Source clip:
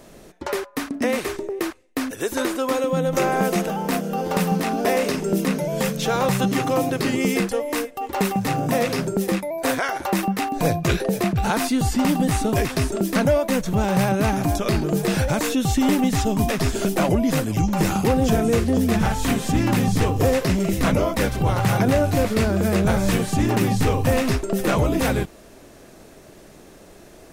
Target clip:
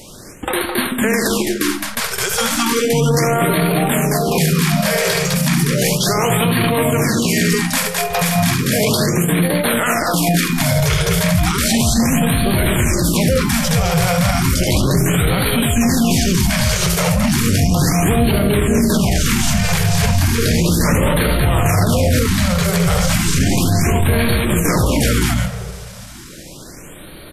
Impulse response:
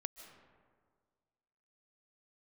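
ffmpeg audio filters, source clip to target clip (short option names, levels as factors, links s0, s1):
-filter_complex "[0:a]equalizer=f=98:t=o:w=2.4:g=4,aecho=1:1:72.89|212.8:0.501|0.562,asetrate=39289,aresample=44100,atempo=1.12246,tiltshelf=f=1100:g=-7.5,asplit=2[s0][s1];[1:a]atrim=start_sample=2205,lowshelf=f=410:g=10.5[s2];[s1][s2]afir=irnorm=-1:irlink=0,volume=1.12[s3];[s0][s3]amix=inputs=2:normalize=0,alimiter=level_in=2.37:limit=0.891:release=50:level=0:latency=1,afftfilt=real='re*(1-between(b*sr/1024,260*pow(6500/260,0.5+0.5*sin(2*PI*0.34*pts/sr))/1.41,260*pow(6500/260,0.5+0.5*sin(2*PI*0.34*pts/sr))*1.41))':imag='im*(1-between(b*sr/1024,260*pow(6500/260,0.5+0.5*sin(2*PI*0.34*pts/sr))/1.41,260*pow(6500/260,0.5+0.5*sin(2*PI*0.34*pts/sr))*1.41))':win_size=1024:overlap=0.75,volume=0.562"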